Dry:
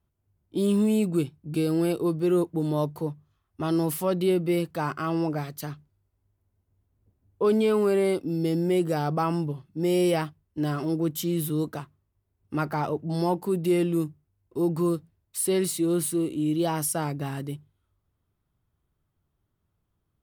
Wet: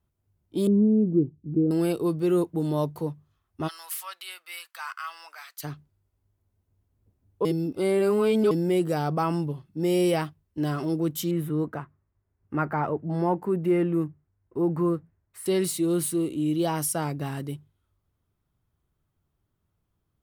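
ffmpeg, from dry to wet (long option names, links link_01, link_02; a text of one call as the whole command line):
ffmpeg -i in.wav -filter_complex "[0:a]asettb=1/sr,asplit=3[link_01][link_02][link_03];[link_01]atrim=end=0.674[link_04];[link_02]atrim=start=0.67:end=1.71,asetpts=PTS-STARTPTS,afade=type=in:duration=0.004:curve=qsin,afade=type=out:start_time=1.036:duration=0.004:curve=qsin,lowpass=frequency=340:width_type=q:width=1.5[link_05];[link_03]atrim=start=1.706[link_06];[link_04][link_05]acrossfade=duration=0.004:curve1=hsin:curve2=qsin[link_07];[link_07][link_06]acrossfade=duration=0.004:curve1=qsin:curve2=hsin,asplit=3[link_08][link_09][link_10];[link_08]afade=type=out:start_time=3.67:duration=0.02[link_11];[link_09]highpass=frequency=1200:width=0.5412,highpass=frequency=1200:width=1.3066,afade=type=in:start_time=3.67:duration=0.02,afade=type=out:start_time=5.63:duration=0.02[link_12];[link_10]afade=type=in:start_time=5.63:duration=0.02[link_13];[link_11][link_12][link_13]amix=inputs=3:normalize=0,asettb=1/sr,asplit=3[link_14][link_15][link_16];[link_14]atrim=end=11.314[link_17];[link_15]atrim=start=11.31:end=15.46,asetpts=PTS-STARTPTS,afade=type=in:duration=0.004:curve=qsin,afade=type=out:start_time=4.146:duration=0.004:curve=qsin,highshelf=frequency=2700:width_type=q:width=1.5:gain=-13[link_18];[link_16]atrim=start=15.456[link_19];[link_17][link_18]acrossfade=duration=0.004:curve1=hsin:curve2=qsin[link_20];[link_20][link_19]acrossfade=duration=0.004:curve1=qsin:curve2=hsin,asplit=3[link_21][link_22][link_23];[link_21]atrim=end=7.452[link_24];[link_22]atrim=start=7.448:end=8.512,asetpts=PTS-STARTPTS,areverse[link_25];[link_23]atrim=start=8.508[link_26];[link_24][link_25]acrossfade=duration=0.004:curve1=hsin:curve2=hsin[link_27];[link_27][link_26]acrossfade=duration=0.004:curve1=hsin:curve2=hsin" out.wav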